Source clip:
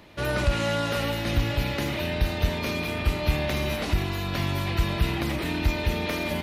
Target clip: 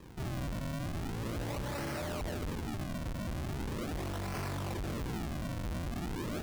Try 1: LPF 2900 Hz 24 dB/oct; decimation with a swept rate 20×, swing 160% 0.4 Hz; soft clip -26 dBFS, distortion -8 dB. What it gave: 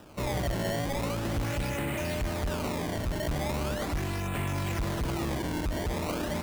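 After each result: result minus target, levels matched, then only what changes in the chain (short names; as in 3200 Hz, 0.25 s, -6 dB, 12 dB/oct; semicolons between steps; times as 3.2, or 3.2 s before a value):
decimation with a swept rate: distortion -5 dB; soft clip: distortion -4 dB
change: decimation with a swept rate 60×, swing 160% 0.4 Hz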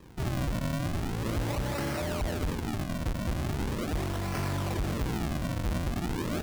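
soft clip: distortion -4 dB
change: soft clip -35 dBFS, distortion -4 dB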